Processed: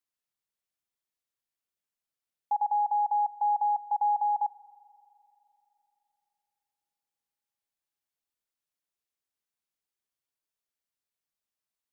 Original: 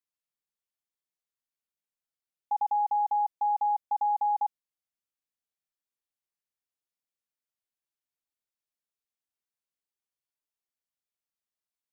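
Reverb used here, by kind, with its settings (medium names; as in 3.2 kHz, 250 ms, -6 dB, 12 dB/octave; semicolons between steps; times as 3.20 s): spring tank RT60 3.2 s, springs 42 ms, chirp 25 ms, DRR 18 dB; trim +1 dB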